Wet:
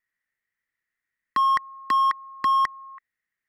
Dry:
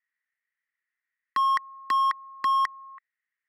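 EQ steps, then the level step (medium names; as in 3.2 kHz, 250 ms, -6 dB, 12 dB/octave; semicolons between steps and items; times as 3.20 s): bass shelf 450 Hz +11 dB; +1.0 dB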